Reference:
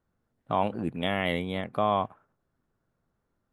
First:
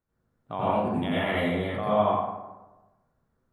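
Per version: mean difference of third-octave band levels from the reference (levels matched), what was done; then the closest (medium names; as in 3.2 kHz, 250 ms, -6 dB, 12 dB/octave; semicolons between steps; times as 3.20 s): 7.0 dB: plate-style reverb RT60 1.1 s, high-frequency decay 0.5×, pre-delay 75 ms, DRR -9 dB; trim -7.5 dB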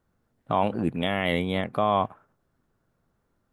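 1.0 dB: peak limiter -16.5 dBFS, peak gain reduction 4 dB; trim +5 dB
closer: second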